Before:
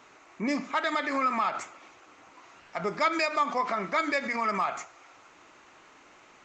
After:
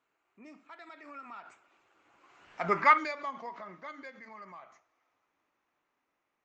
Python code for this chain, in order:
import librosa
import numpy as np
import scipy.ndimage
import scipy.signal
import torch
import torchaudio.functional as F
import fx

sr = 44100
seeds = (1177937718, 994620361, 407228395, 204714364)

y = fx.doppler_pass(x, sr, speed_mps=20, closest_m=3.2, pass_at_s=2.67)
y = fx.bass_treble(y, sr, bass_db=0, treble_db=-6)
y = fx.spec_box(y, sr, start_s=2.71, length_s=0.27, low_hz=850.0, high_hz=2900.0, gain_db=10)